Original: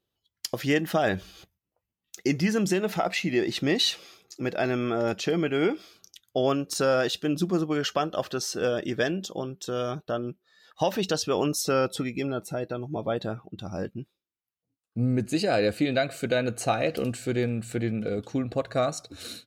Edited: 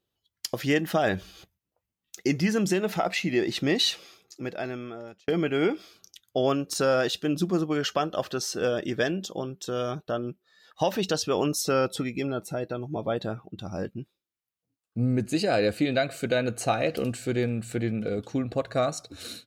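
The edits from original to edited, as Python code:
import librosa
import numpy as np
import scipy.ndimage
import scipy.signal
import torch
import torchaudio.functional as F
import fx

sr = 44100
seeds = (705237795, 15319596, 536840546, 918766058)

y = fx.edit(x, sr, fx.fade_out_span(start_s=3.93, length_s=1.35), tone=tone)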